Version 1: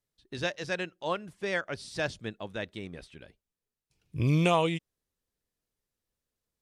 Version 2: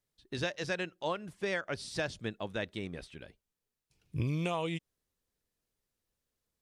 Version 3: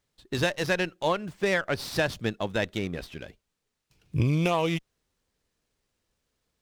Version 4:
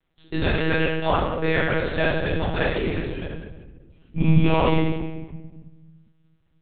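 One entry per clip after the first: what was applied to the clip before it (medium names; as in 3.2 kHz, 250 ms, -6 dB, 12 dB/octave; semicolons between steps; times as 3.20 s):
compression 10:1, threshold -30 dBFS, peak gain reduction 11 dB; trim +1 dB
sliding maximum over 3 samples; trim +8.5 dB
vibrato 3.8 Hz 47 cents; simulated room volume 950 m³, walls mixed, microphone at 3.1 m; monotone LPC vocoder at 8 kHz 160 Hz; trim -1 dB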